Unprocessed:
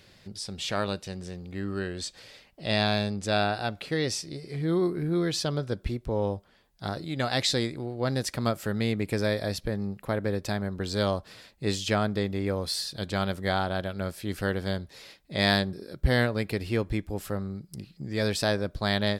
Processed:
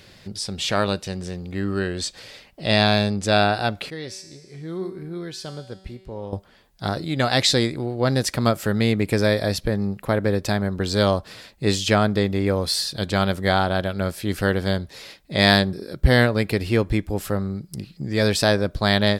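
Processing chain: 3.9–6.33 resonator 190 Hz, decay 1.2 s, mix 80%; gain +7.5 dB

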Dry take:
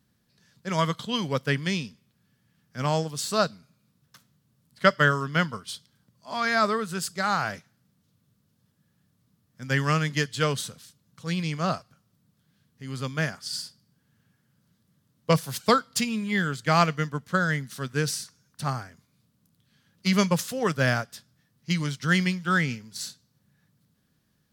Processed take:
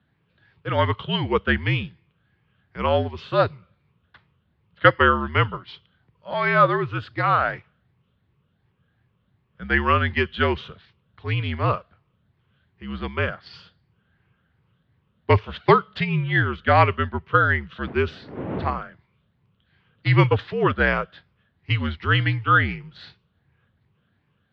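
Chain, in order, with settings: moving spectral ripple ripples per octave 0.83, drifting +2.7 Hz, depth 7 dB; 17.86–18.77 wind noise 400 Hz -28 dBFS; mistuned SSB -62 Hz 160–3300 Hz; gain +5 dB

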